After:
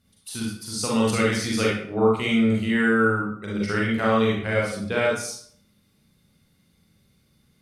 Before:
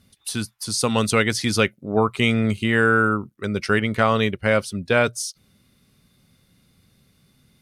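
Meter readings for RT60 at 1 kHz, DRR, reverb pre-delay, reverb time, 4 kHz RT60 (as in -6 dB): 0.55 s, -4.5 dB, 35 ms, 0.60 s, 0.45 s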